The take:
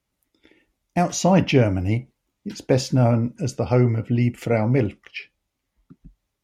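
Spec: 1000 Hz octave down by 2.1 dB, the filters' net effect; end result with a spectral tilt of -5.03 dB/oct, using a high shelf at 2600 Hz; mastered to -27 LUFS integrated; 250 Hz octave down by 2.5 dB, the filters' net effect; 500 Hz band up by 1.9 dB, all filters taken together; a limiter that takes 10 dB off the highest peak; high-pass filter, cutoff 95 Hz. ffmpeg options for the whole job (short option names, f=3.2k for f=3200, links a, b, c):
-af "highpass=95,equalizer=f=250:t=o:g=-4,equalizer=f=500:t=o:g=5,equalizer=f=1k:t=o:g=-7.5,highshelf=f=2.6k:g=6.5,volume=-1dB,alimiter=limit=-15.5dB:level=0:latency=1"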